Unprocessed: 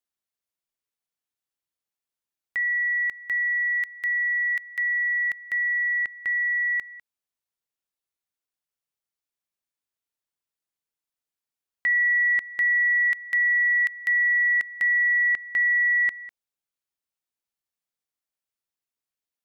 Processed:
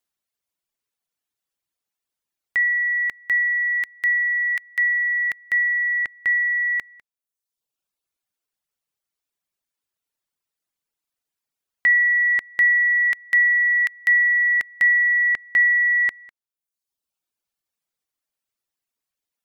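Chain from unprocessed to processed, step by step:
reverb reduction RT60 1 s
level +6.5 dB

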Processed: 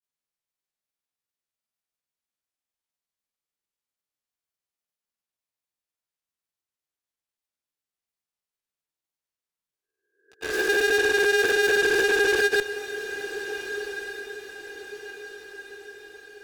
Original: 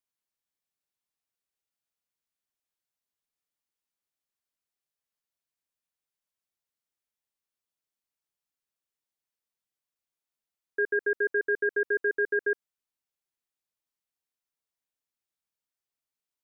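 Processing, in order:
peak hold with a rise ahead of every peak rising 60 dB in 0.82 s
in parallel at −7 dB: fuzz pedal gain 54 dB, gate −47 dBFS
on the sum: granular cloud, pitch spread up and down by 0 semitones
feedback delay with all-pass diffusion 1,440 ms, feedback 45%, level −11.5 dB
level −2 dB

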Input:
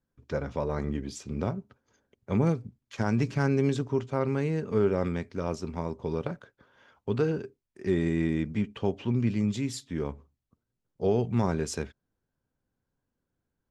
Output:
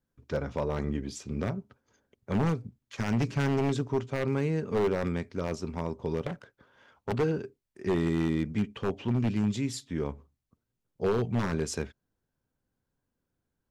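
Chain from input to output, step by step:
0:06.27–0:07.15: phase distortion by the signal itself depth 0.92 ms
wave folding −19.5 dBFS

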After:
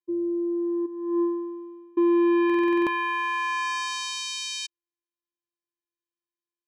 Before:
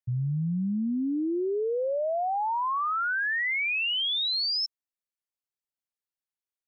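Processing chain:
0:00.85–0:01.97: formant filter u
channel vocoder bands 4, square 344 Hz
buffer that repeats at 0:02.45, samples 2,048, times 8
level +3.5 dB

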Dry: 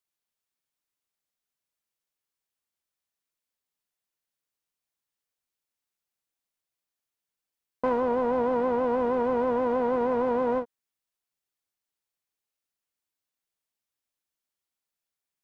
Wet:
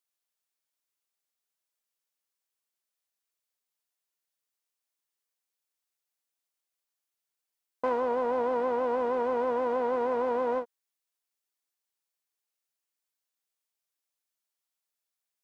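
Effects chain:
bass and treble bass −12 dB, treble +3 dB
level −1.5 dB

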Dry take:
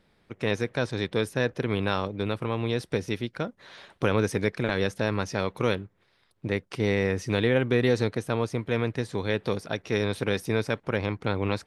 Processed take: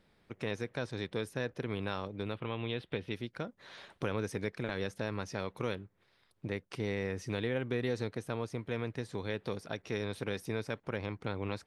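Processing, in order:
0:02.35–0:03.12: high shelf with overshoot 4,600 Hz −12.5 dB, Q 3
downward compressor 1.5 to 1, threshold −39 dBFS, peak gain reduction 8 dB
level −3.5 dB

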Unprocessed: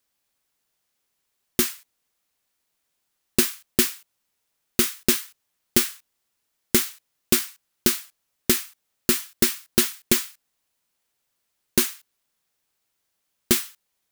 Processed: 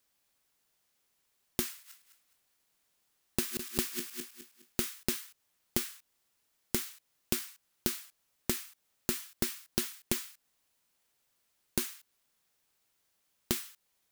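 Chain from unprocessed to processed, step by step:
0:01.71–0:04.81: feedback delay that plays each chunk backwards 104 ms, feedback 55%, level −11 dB
downward compressor 4 to 1, threshold −31 dBFS, peak gain reduction 15 dB

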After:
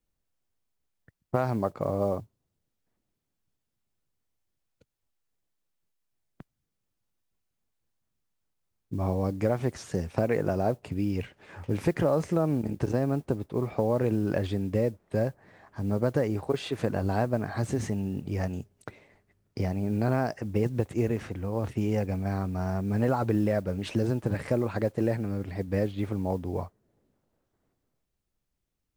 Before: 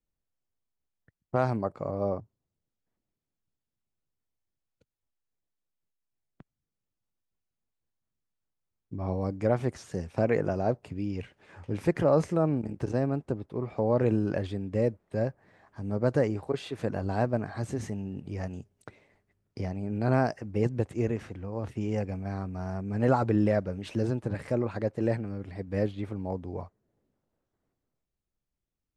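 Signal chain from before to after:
noise that follows the level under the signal 32 dB
downward compressor 4 to 1, threshold −27 dBFS, peak gain reduction 8.5 dB
level +5 dB

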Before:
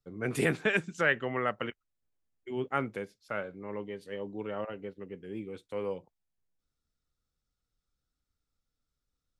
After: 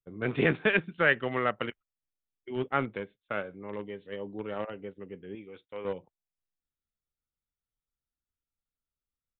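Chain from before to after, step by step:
noise gate −51 dBFS, range −11 dB
0:05.35–0:05.85: low-shelf EQ 430 Hz −10 dB
in parallel at −8 dB: centre clipping without the shift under −28.5 dBFS
on the sum: downsampling to 8,000 Hz

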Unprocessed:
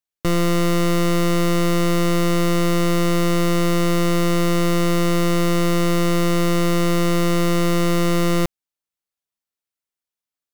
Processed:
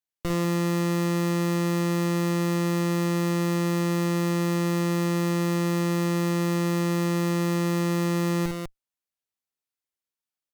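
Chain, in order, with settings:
loudspeakers that aren't time-aligned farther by 18 metres −7 dB, 68 metres −7 dB
asymmetric clip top −28.5 dBFS, bottom −13.5 dBFS
level −4.5 dB

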